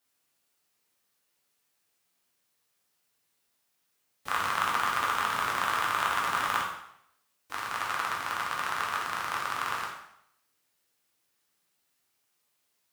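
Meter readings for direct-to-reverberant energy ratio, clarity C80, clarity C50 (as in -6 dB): -3.0 dB, 7.0 dB, 4.0 dB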